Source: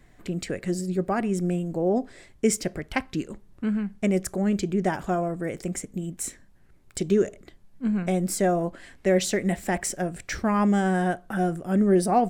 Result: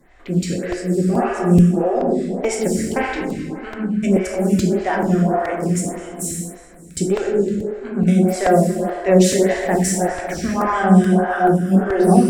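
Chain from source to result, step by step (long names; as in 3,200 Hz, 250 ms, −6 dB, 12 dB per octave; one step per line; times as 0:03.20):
harmonic generator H 2 −15 dB, 4 −30 dB, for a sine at −9.5 dBFS
dense smooth reverb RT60 2.6 s, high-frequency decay 0.55×, DRR −3.5 dB
regular buffer underruns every 0.43 s, samples 128, repeat, from 0:00.72
phaser with staggered stages 1.7 Hz
level +5.5 dB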